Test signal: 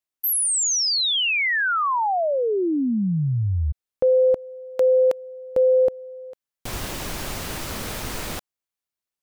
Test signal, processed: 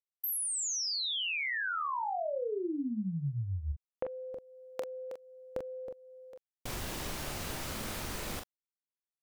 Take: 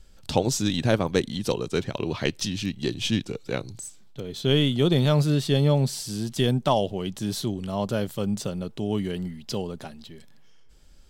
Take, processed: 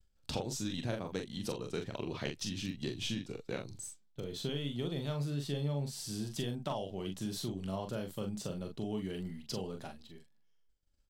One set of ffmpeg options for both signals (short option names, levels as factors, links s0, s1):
-filter_complex "[0:a]agate=range=0.0224:threshold=0.0112:ratio=3:release=120:detection=peak,acompressor=threshold=0.0398:ratio=6:attack=25:release=322:knee=6:detection=rms,asplit=2[s0][s1];[s1]aecho=0:1:28|42:0.2|0.531[s2];[s0][s2]amix=inputs=2:normalize=0,volume=0.473"